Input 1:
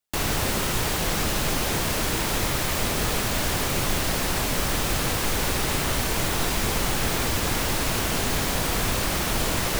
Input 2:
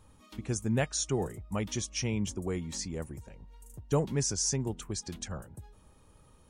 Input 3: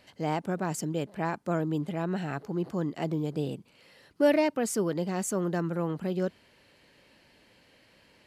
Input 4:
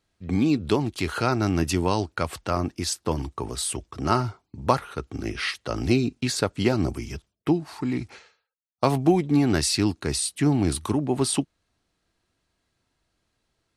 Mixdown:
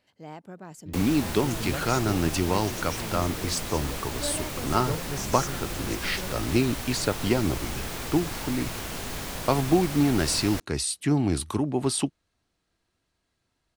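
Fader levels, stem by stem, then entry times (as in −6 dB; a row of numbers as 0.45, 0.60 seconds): −9.5, −5.5, −12.0, −2.0 decibels; 0.80, 0.95, 0.00, 0.65 seconds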